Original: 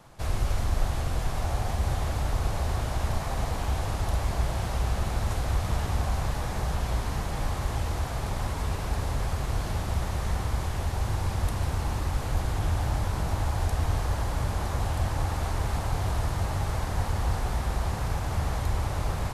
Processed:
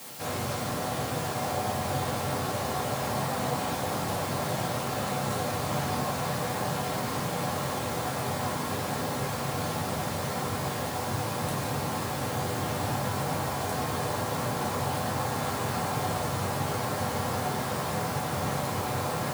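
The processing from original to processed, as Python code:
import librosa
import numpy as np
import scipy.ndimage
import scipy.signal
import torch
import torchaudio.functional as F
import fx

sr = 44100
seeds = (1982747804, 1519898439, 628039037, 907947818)

p1 = fx.quant_dither(x, sr, seeds[0], bits=6, dither='triangular')
p2 = x + F.gain(torch.from_numpy(p1), -7.0).numpy()
p3 = scipy.signal.sosfilt(scipy.signal.butter(4, 140.0, 'highpass', fs=sr, output='sos'), p2)
p4 = fx.room_shoebox(p3, sr, seeds[1], volume_m3=160.0, walls='furnished', distance_m=2.2)
y = F.gain(torch.from_numpy(p4), -4.0).numpy()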